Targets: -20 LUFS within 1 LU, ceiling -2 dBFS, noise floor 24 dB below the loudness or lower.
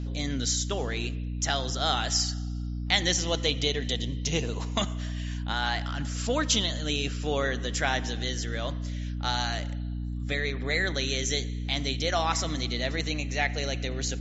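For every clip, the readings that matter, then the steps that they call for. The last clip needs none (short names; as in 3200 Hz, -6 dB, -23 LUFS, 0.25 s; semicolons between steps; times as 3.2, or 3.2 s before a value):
hum 60 Hz; harmonics up to 300 Hz; hum level -30 dBFS; loudness -28.5 LUFS; peak -7.5 dBFS; loudness target -20.0 LUFS
-> de-hum 60 Hz, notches 5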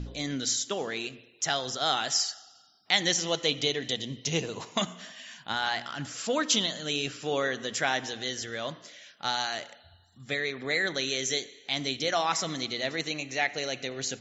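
hum none; loudness -29.5 LUFS; peak -8.0 dBFS; loudness target -20.0 LUFS
-> gain +9.5 dB; limiter -2 dBFS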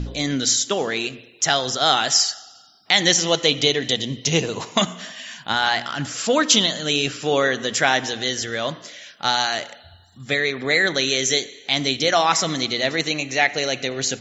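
loudness -20.0 LUFS; peak -2.0 dBFS; noise floor -49 dBFS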